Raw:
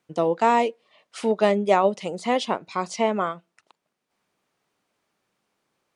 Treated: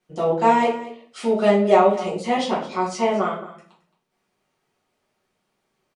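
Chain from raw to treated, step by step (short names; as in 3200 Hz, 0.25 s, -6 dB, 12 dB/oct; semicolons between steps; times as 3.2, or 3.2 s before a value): echo 0.22 s -16.5 dB; shoebox room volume 48 m³, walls mixed, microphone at 1.5 m; gain -6.5 dB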